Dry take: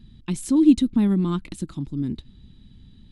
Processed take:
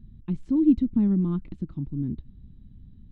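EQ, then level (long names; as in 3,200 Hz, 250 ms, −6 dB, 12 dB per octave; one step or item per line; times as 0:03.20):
head-to-tape spacing loss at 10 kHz 35 dB
low-shelf EQ 300 Hz +10.5 dB
−8.5 dB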